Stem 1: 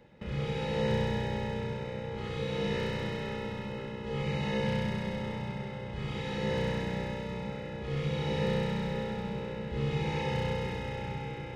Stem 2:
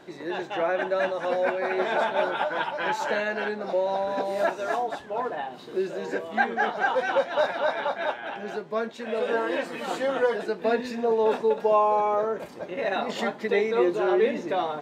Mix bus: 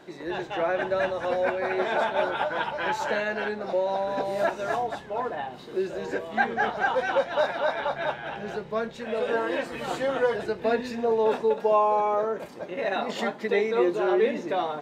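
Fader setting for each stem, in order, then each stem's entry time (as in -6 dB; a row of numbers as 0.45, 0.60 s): -16.0, -0.5 dB; 0.00, 0.00 s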